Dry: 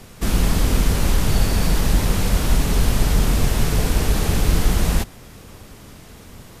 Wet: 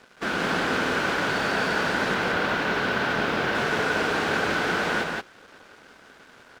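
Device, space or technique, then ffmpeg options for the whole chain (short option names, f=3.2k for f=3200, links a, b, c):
pocket radio on a weak battery: -filter_complex "[0:a]asettb=1/sr,asplit=3[a][b][c];[a]atrim=end=2.144[d];[b]atrim=start=2.14:end=3.55,asetpts=PTS-STARTPTS,afade=t=in:d=0.004:c=qsin,afade=t=out:st=1.406:d=0.004:c=qsin,lowpass=5.1k[e];[c]atrim=start=3.546[f];[d][e]acrossfade=d=0.004:c1=hsin:c2=qsin[g];[g][f]acrossfade=d=0.004:c1=qsin:c2=hsin,highpass=360,lowpass=3.2k,aeval=exprs='sgn(val(0))*max(abs(val(0))-0.00355,0)':c=same,equalizer=f=1.5k:t=o:w=0.23:g=12,aecho=1:1:175:0.708,volume=2dB"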